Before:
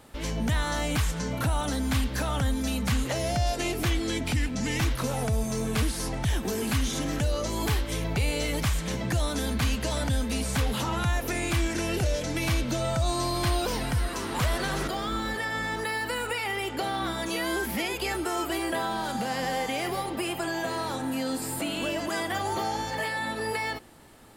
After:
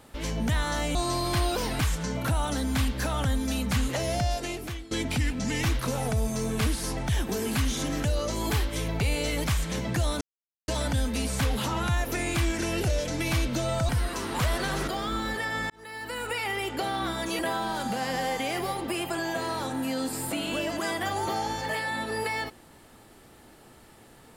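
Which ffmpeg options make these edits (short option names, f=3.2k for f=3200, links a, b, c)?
-filter_complex "[0:a]asplit=9[a][b][c][d][e][f][g][h][i];[a]atrim=end=0.952[j];[b]atrim=start=13.048:end=13.892[k];[c]atrim=start=0.948:end=4.07,asetpts=PTS-STARTPTS,afade=t=out:st=2.392:d=0.73:silence=0.1[l];[d]atrim=start=4.07:end=9.37,asetpts=PTS-STARTPTS,afade=t=in:d=0.004:c=hsin:silence=0.1,afade=t=out:st=5.296:d=0.004:c=hsin[m];[e]atrim=start=9.37:end=9.84,asetpts=PTS-STARTPTS,volume=0[n];[f]atrim=start=9.84:end=13.052,asetpts=PTS-STARTPTS,afade=t=in:d=0.004:c=hsin[o];[g]atrim=start=13.888:end=15.7,asetpts=PTS-STARTPTS,afade=t=out:st=1.808:d=0.004:c=hsin[p];[h]atrim=start=15.7:end=17.392,asetpts=PTS-STARTPTS,afade=t=in:d=0.69[q];[i]atrim=start=18.678[r];[j][k]acrossfade=d=0.004:c1=hsin:c2=hsin[s];[l][m][n][o]concat=n=4:v=0:a=1[t];[s][t]acrossfade=d=0.004:c1=hsin:c2=hsin[u];[p][q]concat=n=2:v=0:a=1[v];[u][v]acrossfade=d=0.004:c1=hsin:c2=hsin[w];[w][r]acrossfade=d=0.004:c1=hsin:c2=hsin"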